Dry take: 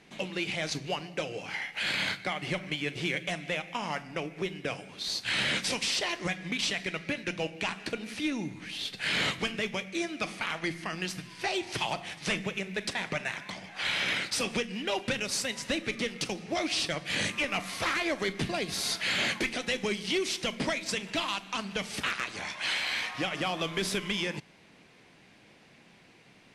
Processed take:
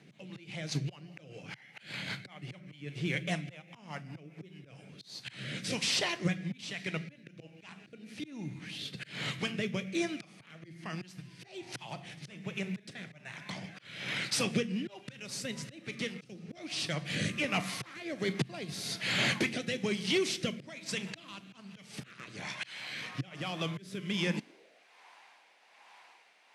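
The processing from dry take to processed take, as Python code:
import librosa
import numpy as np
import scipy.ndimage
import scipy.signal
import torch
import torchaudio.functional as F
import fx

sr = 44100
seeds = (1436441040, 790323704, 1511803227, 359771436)

y = fx.auto_swell(x, sr, attack_ms=502.0)
y = fx.rotary_switch(y, sr, hz=5.0, then_hz=1.2, switch_at_s=4.39)
y = fx.filter_sweep_highpass(y, sr, from_hz=130.0, to_hz=900.0, start_s=24.23, end_s=24.85, q=3.5)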